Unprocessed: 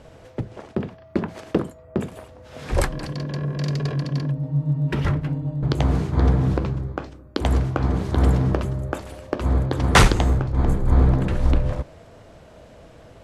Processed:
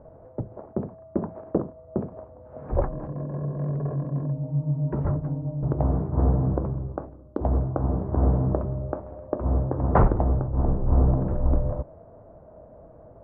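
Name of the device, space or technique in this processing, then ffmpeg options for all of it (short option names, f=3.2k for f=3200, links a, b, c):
under water: -filter_complex "[0:a]lowpass=f=1.1k:w=0.5412,lowpass=f=1.1k:w=1.3066,equalizer=f=620:t=o:w=0.34:g=5.5,asettb=1/sr,asplit=3[a][b][c];[a]atrim=end=7.224[d];[b]atrim=start=7.22:end=8.02,asetpts=PTS-STARTPTS,afade=t=in:d=0.004:c=qsin,afade=t=out:st=0.796:d=0.004:c=qsin,highshelf=f=3.5k:t=q:w=1.5:g=11.5[e];[c]atrim=start=8.016[f];[d][e]acrossfade=d=0.004:c1=hsin:c2=qsin[g];[g][f]acrossfade=d=0.004:c1=qsin:c2=hsin,volume=-3.5dB"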